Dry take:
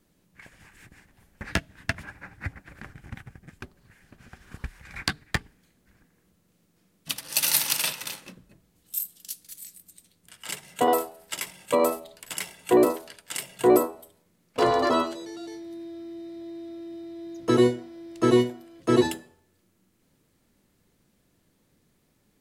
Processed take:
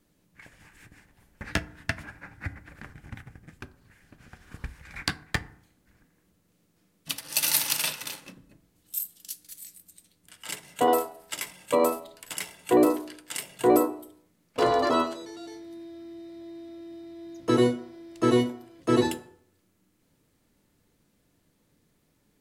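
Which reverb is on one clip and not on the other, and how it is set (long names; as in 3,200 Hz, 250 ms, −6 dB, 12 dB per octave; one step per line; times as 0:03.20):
feedback delay network reverb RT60 0.61 s, low-frequency decay 1.1×, high-frequency decay 0.4×, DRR 12 dB
level −1.5 dB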